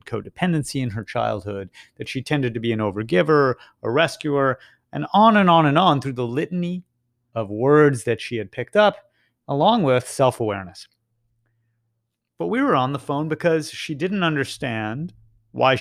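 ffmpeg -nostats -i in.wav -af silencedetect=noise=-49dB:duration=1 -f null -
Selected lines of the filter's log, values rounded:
silence_start: 10.86
silence_end: 12.39 | silence_duration: 1.53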